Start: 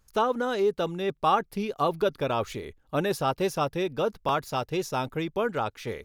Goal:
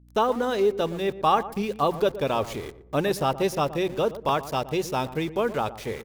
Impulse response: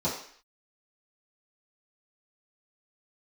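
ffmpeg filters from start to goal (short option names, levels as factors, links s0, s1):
-filter_complex "[0:a]equalizer=f=1400:w=6.5:g=-5,bandreject=f=60:t=h:w=6,bandreject=f=120:t=h:w=6,bandreject=f=180:t=h:w=6,aeval=exprs='val(0)*gte(abs(val(0)),0.00841)':c=same,aeval=exprs='val(0)+0.00178*(sin(2*PI*60*n/s)+sin(2*PI*2*60*n/s)/2+sin(2*PI*3*60*n/s)/3+sin(2*PI*4*60*n/s)/4+sin(2*PI*5*60*n/s)/5)':c=same,asplit=2[s0][s1];[s1]adelay=118,lowpass=f=940:p=1,volume=0.224,asplit=2[s2][s3];[s3]adelay=118,lowpass=f=940:p=1,volume=0.41,asplit=2[s4][s5];[s5]adelay=118,lowpass=f=940:p=1,volume=0.41,asplit=2[s6][s7];[s7]adelay=118,lowpass=f=940:p=1,volume=0.41[s8];[s2][s4][s6][s8]amix=inputs=4:normalize=0[s9];[s0][s9]amix=inputs=2:normalize=0,volume=1.33"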